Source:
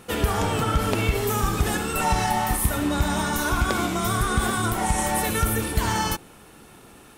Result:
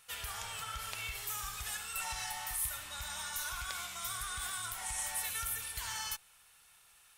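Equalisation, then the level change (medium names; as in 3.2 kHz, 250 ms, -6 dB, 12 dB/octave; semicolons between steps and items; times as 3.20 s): amplifier tone stack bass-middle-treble 10-0-10; bass shelf 490 Hz -9 dB; -7.5 dB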